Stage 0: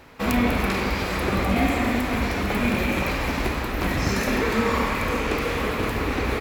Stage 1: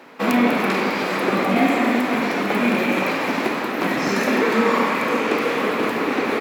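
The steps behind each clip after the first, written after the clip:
high-pass filter 200 Hz 24 dB per octave
high-shelf EQ 4,000 Hz −7.5 dB
level +5.5 dB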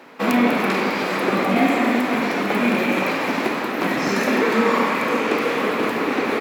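no processing that can be heard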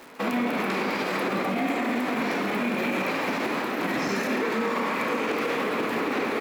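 brickwall limiter −15.5 dBFS, peak gain reduction 9.5 dB
surface crackle 450 per second −37 dBFS
level −2.5 dB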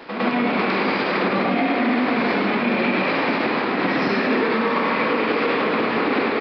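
downsampling to 11,025 Hz
backwards echo 106 ms −7 dB
level +5.5 dB

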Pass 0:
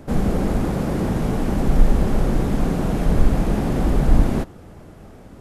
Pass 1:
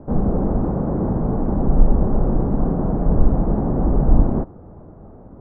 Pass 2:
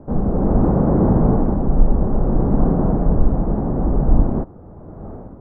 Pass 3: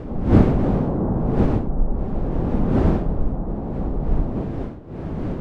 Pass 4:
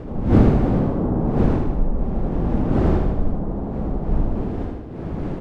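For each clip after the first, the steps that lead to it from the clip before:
low-pass filter 1,100 Hz 24 dB per octave; level +1 dB
automatic gain control gain up to 12 dB; level −1 dB
wind on the microphone 270 Hz −16 dBFS; level −7 dB
repeating echo 77 ms, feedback 60%, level −5 dB; level −1 dB

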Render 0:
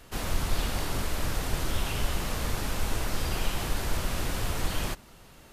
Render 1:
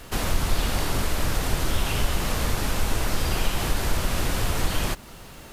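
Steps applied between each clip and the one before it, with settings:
in parallel at +2 dB: downward compressor, threshold −34 dBFS, peak gain reduction 14 dB
on the sum: bit reduction 10 bits
level +2 dB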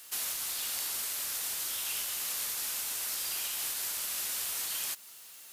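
first difference

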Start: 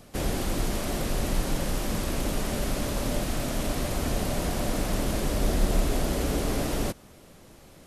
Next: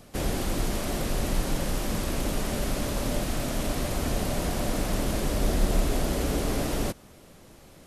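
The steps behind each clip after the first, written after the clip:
no processing that can be heard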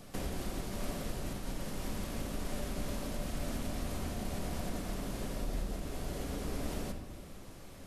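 downward compressor 6 to 1, threshold −35 dBFS, peak gain reduction 16.5 dB
on a send at −4 dB: convolution reverb RT60 1.1 s, pre-delay 4 ms
on the sum: level −2 dB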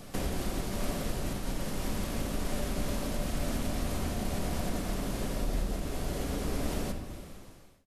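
fade-out on the ending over 0.74 s
level +5 dB

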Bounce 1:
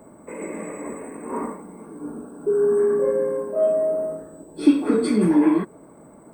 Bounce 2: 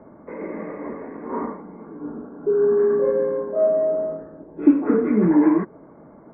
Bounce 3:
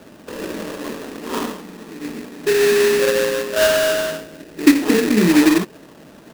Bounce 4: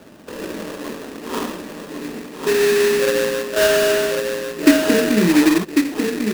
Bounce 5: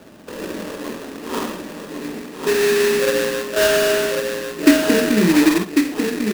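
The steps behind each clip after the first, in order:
Butterworth low-pass 2,100 Hz 48 dB per octave; level +1 dB
sample-rate reduction 2,200 Hz, jitter 20%; level +3 dB
single-tap delay 1,097 ms −4.5 dB; level −1 dB
double-tracking delay 48 ms −11 dB

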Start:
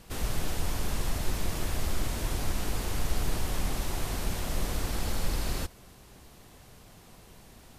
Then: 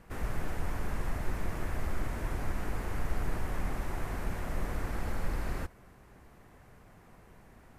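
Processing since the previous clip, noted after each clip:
high shelf with overshoot 2,600 Hz −10 dB, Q 1.5
level −3 dB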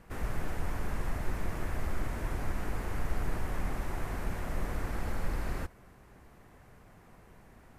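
no processing that can be heard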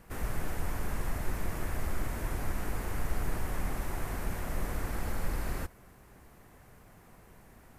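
high-shelf EQ 7,800 Hz +10 dB

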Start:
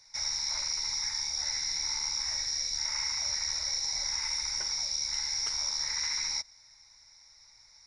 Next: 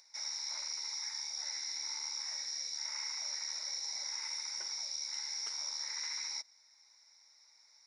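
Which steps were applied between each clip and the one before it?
high-pass filter 270 Hz 24 dB per octave
upward compression, threshold −52 dBFS
level −7.5 dB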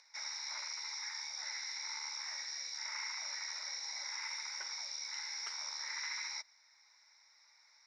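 resonant band-pass 1,600 Hz, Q 0.86
level +6 dB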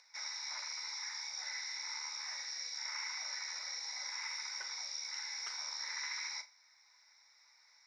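tuned comb filter 250 Hz, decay 0.15 s, harmonics all, mix 60%
flutter between parallel walls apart 6.7 metres, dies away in 0.21 s
level +5.5 dB

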